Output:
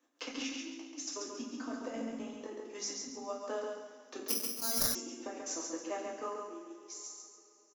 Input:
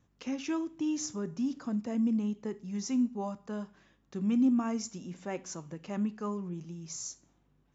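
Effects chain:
fade-out on the ending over 2.48 s
Butterworth high-pass 250 Hz 96 dB per octave
compressor whose output falls as the input rises −40 dBFS, ratio −0.5
transient designer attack +6 dB, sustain −10 dB
on a send: repeating echo 137 ms, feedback 36%, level −4 dB
on the sum: coupled-rooms reverb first 0.45 s, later 3.8 s, from −20 dB, DRR −2 dB
0:04.28–0:04.95: bad sample-rate conversion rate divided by 8×, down none, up zero stuff
level −7 dB

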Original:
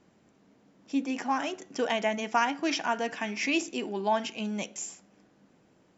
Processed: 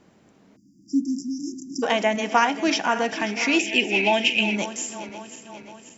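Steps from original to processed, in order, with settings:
feedback delay that plays each chunk backwards 268 ms, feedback 73%, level −13 dB
0:00.56–0:01.83: time-frequency box erased 350–4,700 Hz
0:03.59–0:04.56: drawn EQ curve 800 Hz 0 dB, 1,200 Hz −16 dB, 2,500 Hz +15 dB, 4,500 Hz 0 dB
level +6.5 dB

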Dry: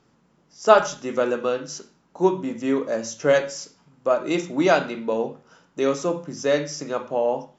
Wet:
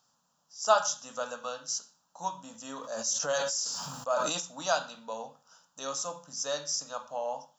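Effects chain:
spectral tilt +4 dB per octave
phaser with its sweep stopped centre 890 Hz, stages 4
0:02.52–0:04.40: level that may fall only so fast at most 29 dB per second
level −6 dB

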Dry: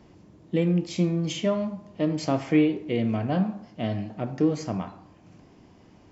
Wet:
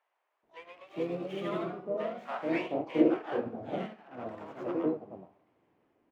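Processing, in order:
running median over 9 samples
high-shelf EQ 6,400 Hz −5 dB
delay with pitch and tempo change per echo 154 ms, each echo +1 semitone, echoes 3
pitch-shifted copies added −4 semitones −10 dB, +12 semitones −15 dB
three-way crossover with the lows and the highs turned down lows −18 dB, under 340 Hz, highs −13 dB, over 3,300 Hz
multiband delay without the direct sound highs, lows 430 ms, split 710 Hz
expander for the loud parts 1.5 to 1, over −47 dBFS

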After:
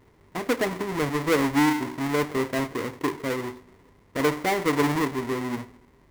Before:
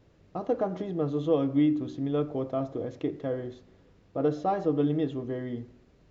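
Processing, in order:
each half-wave held at its own peak
thirty-one-band graphic EQ 250 Hz +6 dB, 400 Hz +8 dB, 1,000 Hz +10 dB, 2,000 Hz +10 dB
level −4 dB

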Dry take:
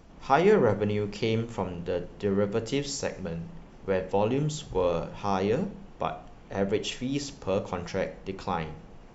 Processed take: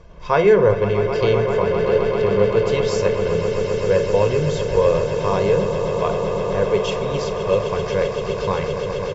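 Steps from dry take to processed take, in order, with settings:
high-frequency loss of the air 88 metres
comb filter 1.9 ms, depth 82%
echo that builds up and dies away 130 ms, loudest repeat 8, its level −12 dB
level +5 dB

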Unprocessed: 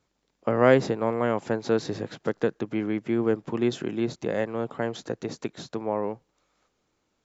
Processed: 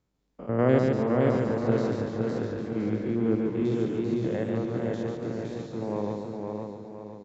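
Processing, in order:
spectrum averaged block by block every 100 ms
low-shelf EQ 360 Hz +11 dB
repeating echo 143 ms, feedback 39%, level −4 dB
feedback echo with a swinging delay time 512 ms, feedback 44%, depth 52 cents, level −3.5 dB
level −8 dB

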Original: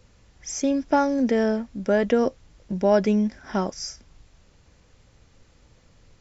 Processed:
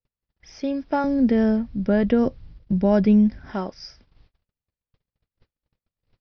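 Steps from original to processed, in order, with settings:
Butterworth low-pass 5,200 Hz 72 dB per octave
noise gate −50 dBFS, range −37 dB
0:01.04–0:03.51: bass and treble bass +14 dB, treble +1 dB
level −3 dB

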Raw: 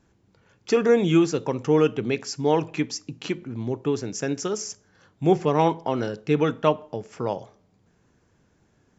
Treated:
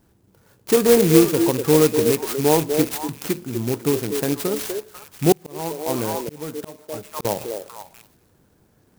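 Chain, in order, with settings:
loose part that buzzes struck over −29 dBFS, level −25 dBFS
dynamic equaliser 1,400 Hz, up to −4 dB, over −41 dBFS, Q 2.9
echo through a band-pass that steps 246 ms, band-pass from 440 Hz, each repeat 1.4 octaves, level −4 dB
0:05.32–0:07.25: volume swells 739 ms
converter with an unsteady clock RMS 0.095 ms
level +4 dB

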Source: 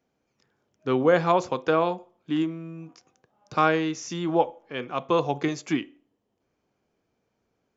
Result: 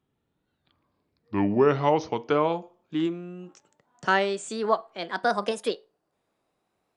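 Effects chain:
gliding playback speed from 54% → 169%
level −1 dB

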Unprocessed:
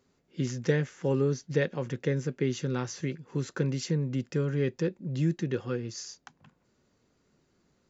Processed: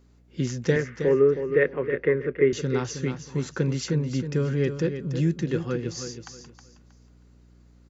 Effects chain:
0:00.76–0:02.53: loudspeaker in its box 200–2,400 Hz, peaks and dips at 210 Hz −8 dB, 410 Hz +8 dB, 830 Hz −8 dB, 1,200 Hz +4 dB, 2,000 Hz +8 dB
mains hum 60 Hz, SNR 31 dB
repeating echo 317 ms, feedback 26%, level −9 dB
level +3.5 dB

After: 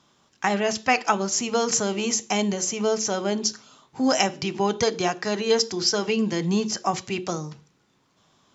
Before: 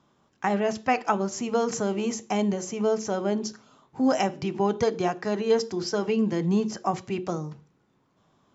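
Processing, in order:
parametric band 5,400 Hz +12 dB 2.9 octaves

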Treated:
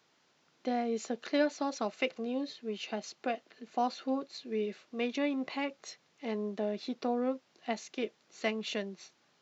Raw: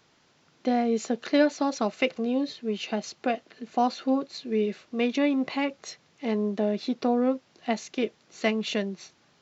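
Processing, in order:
high-pass filter 250 Hz 6 dB per octave
level −6 dB

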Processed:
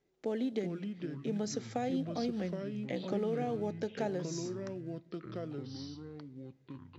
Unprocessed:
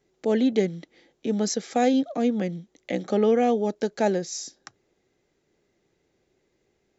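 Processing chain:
downward compressor 16 to 1, threshold −22 dBFS, peak gain reduction 7.5 dB
floating-point word with a short mantissa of 4 bits
high-frequency loss of the air 60 metres
on a send at −19 dB: convolution reverb RT60 0.75 s, pre-delay 4 ms
on the sum: delay with pitch and tempo change per echo 312 ms, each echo −4 semitones, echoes 3, each echo −6 dB
level −8 dB

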